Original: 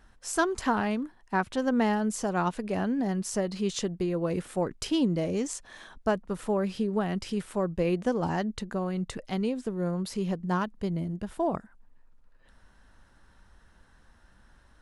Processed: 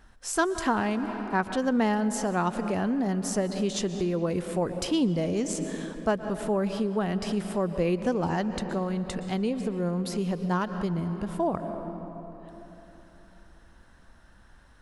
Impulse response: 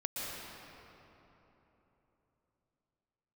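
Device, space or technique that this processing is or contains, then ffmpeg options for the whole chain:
ducked reverb: -filter_complex "[0:a]asplit=3[s0][s1][s2];[1:a]atrim=start_sample=2205[s3];[s1][s3]afir=irnorm=-1:irlink=0[s4];[s2]apad=whole_len=653151[s5];[s4][s5]sidechaincompress=threshold=0.02:ratio=8:attack=30:release=126,volume=0.422[s6];[s0][s6]amix=inputs=2:normalize=0"

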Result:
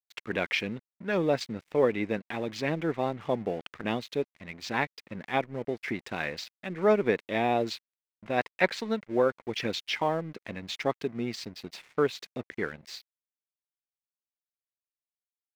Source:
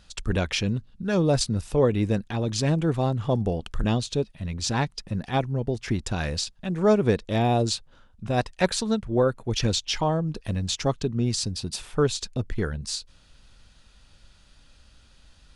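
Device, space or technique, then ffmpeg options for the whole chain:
pocket radio on a weak battery: -af "highpass=260,lowpass=3300,aeval=exprs='sgn(val(0))*max(abs(val(0))-0.00355,0)':c=same,equalizer=f=2100:t=o:w=0.49:g=10,volume=0.794"

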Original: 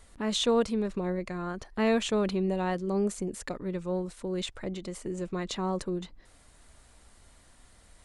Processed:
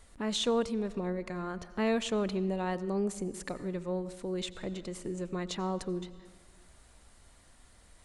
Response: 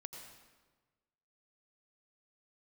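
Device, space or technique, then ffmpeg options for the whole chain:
compressed reverb return: -filter_complex "[0:a]asplit=2[s0][s1];[1:a]atrim=start_sample=2205[s2];[s1][s2]afir=irnorm=-1:irlink=0,acompressor=threshold=0.0178:ratio=6,volume=0.841[s3];[s0][s3]amix=inputs=2:normalize=0,volume=0.562"

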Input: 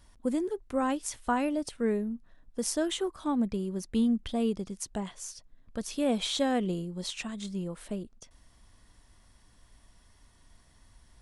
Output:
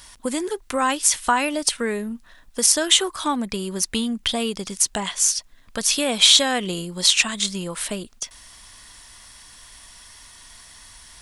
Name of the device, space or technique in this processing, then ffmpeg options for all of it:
mastering chain: -af "equalizer=f=990:t=o:w=0.26:g=2.5,acompressor=threshold=0.0316:ratio=2.5,tiltshelf=f=940:g=-9.5,alimiter=level_in=5.31:limit=0.891:release=50:level=0:latency=1,volume=0.891"

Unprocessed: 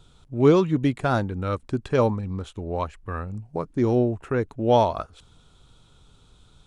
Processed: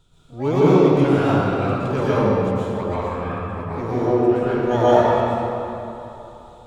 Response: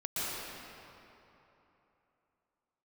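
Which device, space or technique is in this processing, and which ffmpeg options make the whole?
shimmer-style reverb: -filter_complex "[0:a]asettb=1/sr,asplit=3[s0][s1][s2];[s0]atrim=end=3.274[s3];[s1]atrim=start=3.27:end=3.9,asetpts=PTS-STARTPTS,afade=t=in:d=0.004:c=qsin,afade=t=out:st=0.626:d=0.004:c=qsin,equalizer=f=200:t=o:w=1.8:g=-4[s4];[s2]atrim=start=3.896[s5];[s3][s4]acrossfade=d=0.004:c1=hsin:c2=qsin[s6];[s6][s5]acrossfade=d=0.004:c1=qsin:c2=hsin,asplit=2[s7][s8];[s8]asetrate=88200,aresample=44100,atempo=0.5,volume=0.251[s9];[s7][s9]amix=inputs=2:normalize=0[s10];[1:a]atrim=start_sample=2205[s11];[s10][s11]afir=irnorm=-1:irlink=0,volume=0.75"

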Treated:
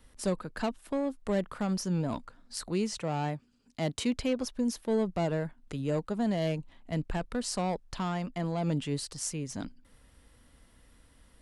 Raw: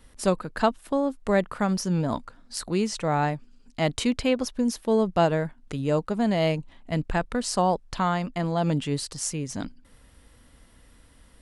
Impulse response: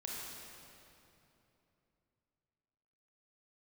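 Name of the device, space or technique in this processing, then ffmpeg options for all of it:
one-band saturation: -filter_complex "[0:a]acrossover=split=450|3900[s0][s1][s2];[s1]asoftclip=type=tanh:threshold=0.0501[s3];[s0][s3][s2]amix=inputs=3:normalize=0,asettb=1/sr,asplit=3[s4][s5][s6];[s4]atrim=end=2.974[s7];[s5]atrim=start=2.97:end=4.14,asetpts=PTS-STARTPTS,afade=t=in:d=0.004:c=qsin,afade=t=out:st=1.166:d=0.004:c=qsin,highpass=65[s8];[s6]atrim=start=4.136[s9];[s7][s8]acrossfade=d=0.004:c1=hsin:c2=qsin[s10];[s10][s9]acrossfade=d=0.004:c1=qsin:c2=hsin,volume=0.562"

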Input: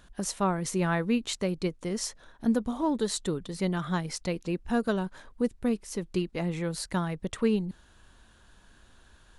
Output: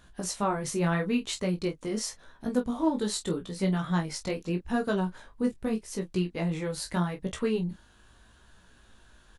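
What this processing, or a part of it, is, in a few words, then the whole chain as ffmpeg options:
double-tracked vocal: -filter_complex "[0:a]asplit=2[s0][s1];[s1]adelay=28,volume=0.355[s2];[s0][s2]amix=inputs=2:normalize=0,flanger=delay=15.5:depth=4.2:speed=0.82,volume=1.33"

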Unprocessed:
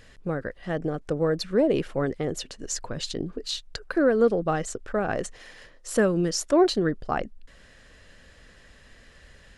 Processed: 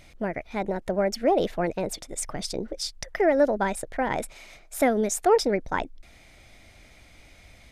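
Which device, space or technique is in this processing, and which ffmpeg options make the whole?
nightcore: -af "asetrate=54684,aresample=44100"

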